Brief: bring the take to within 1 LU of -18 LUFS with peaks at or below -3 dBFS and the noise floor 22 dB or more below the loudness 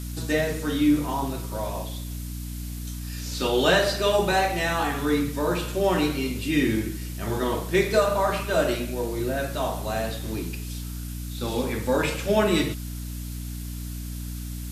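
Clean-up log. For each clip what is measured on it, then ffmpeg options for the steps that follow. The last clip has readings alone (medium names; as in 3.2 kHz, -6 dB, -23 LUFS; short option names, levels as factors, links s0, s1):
hum 60 Hz; highest harmonic 300 Hz; hum level -31 dBFS; noise floor -34 dBFS; noise floor target -48 dBFS; loudness -26.0 LUFS; peak level -7.0 dBFS; loudness target -18.0 LUFS
-> -af "bandreject=f=60:t=h:w=4,bandreject=f=120:t=h:w=4,bandreject=f=180:t=h:w=4,bandreject=f=240:t=h:w=4,bandreject=f=300:t=h:w=4"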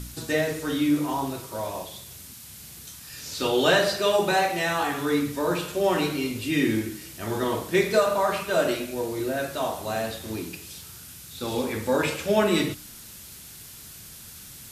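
hum not found; noise floor -44 dBFS; noise floor target -48 dBFS
-> -af "afftdn=nr=6:nf=-44"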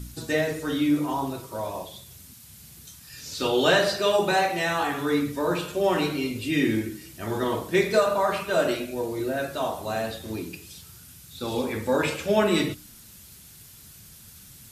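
noise floor -49 dBFS; loudness -25.5 LUFS; peak level -6.5 dBFS; loudness target -18.0 LUFS
-> -af "volume=2.37,alimiter=limit=0.708:level=0:latency=1"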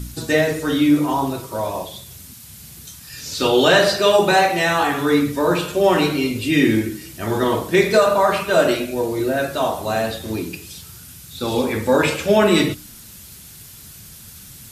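loudness -18.0 LUFS; peak level -3.0 dBFS; noise floor -41 dBFS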